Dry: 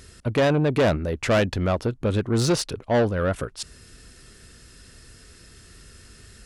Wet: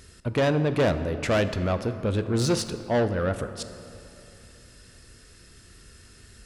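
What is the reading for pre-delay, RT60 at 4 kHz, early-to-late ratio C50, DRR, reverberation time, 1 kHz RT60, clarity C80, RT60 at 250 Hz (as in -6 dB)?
18 ms, 1.7 s, 11.0 dB, 10.0 dB, 2.9 s, 2.8 s, 12.0 dB, 2.9 s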